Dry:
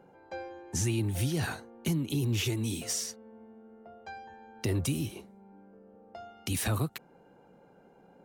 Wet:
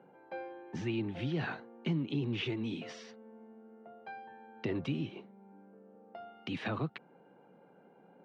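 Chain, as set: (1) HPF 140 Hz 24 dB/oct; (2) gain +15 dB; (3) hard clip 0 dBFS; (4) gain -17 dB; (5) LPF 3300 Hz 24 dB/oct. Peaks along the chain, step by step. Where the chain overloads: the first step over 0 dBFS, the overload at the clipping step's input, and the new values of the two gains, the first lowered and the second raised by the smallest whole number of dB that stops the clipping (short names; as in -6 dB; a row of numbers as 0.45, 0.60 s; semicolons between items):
-20.0, -5.0, -5.0, -22.0, -22.5 dBFS; no overload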